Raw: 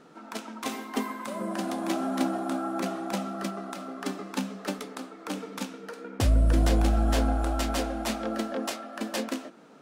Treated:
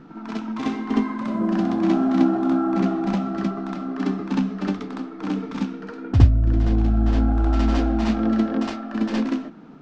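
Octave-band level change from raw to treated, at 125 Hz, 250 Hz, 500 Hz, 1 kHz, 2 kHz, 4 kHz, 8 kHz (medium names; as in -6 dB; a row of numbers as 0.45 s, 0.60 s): +8.5 dB, +10.5 dB, +3.5 dB, +3.0 dB, +1.5 dB, -2.0 dB, no reading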